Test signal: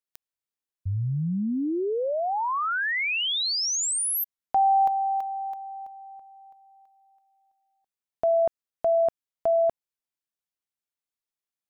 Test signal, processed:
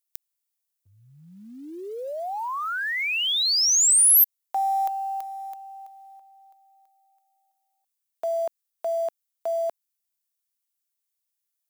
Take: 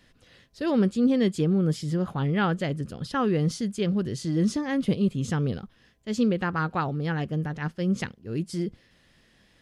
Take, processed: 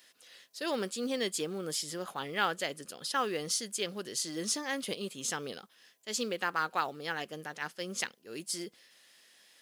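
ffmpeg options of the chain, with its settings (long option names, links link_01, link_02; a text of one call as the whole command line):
ffmpeg -i in.wav -af "crystalizer=i=3.5:c=0,highpass=480,acrusher=bits=7:mode=log:mix=0:aa=0.000001,volume=-4dB" out.wav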